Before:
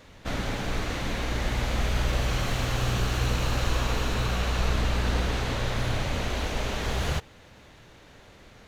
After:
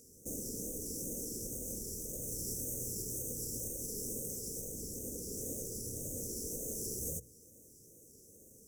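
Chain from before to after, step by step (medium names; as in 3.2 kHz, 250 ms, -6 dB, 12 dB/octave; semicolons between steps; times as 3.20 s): comb filter that takes the minimum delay 0.36 ms; compression, threshold -27 dBFS, peak gain reduction 7.5 dB; Chebyshev band-stop 480–6200 Hz, order 4; peaking EQ 4.1 kHz -10.5 dB 0.82 oct; hum notches 60/120/180 Hz; wow and flutter 110 cents; tilt EQ +3.5 dB/octave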